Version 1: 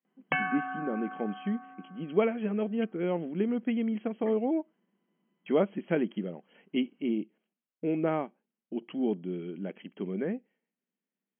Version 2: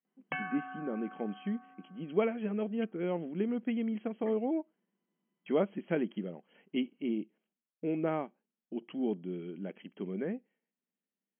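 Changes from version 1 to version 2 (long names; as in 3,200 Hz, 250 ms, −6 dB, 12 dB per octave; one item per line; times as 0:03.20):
speech −3.5 dB
background −8.0 dB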